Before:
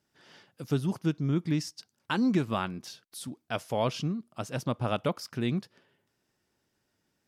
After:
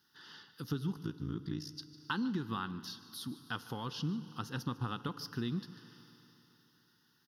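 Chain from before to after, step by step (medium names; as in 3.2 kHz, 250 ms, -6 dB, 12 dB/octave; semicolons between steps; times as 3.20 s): bass shelf 74 Hz -11 dB; compression, threshold -31 dBFS, peak gain reduction 9 dB; static phaser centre 2.3 kHz, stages 6; 0.92–1.72 s: AM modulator 57 Hz, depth 85%; on a send: delay 150 ms -18 dB; on the sum: FDN reverb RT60 3.2 s, high-frequency decay 0.95×, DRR 15 dB; tape noise reduction on one side only encoder only; trim +1 dB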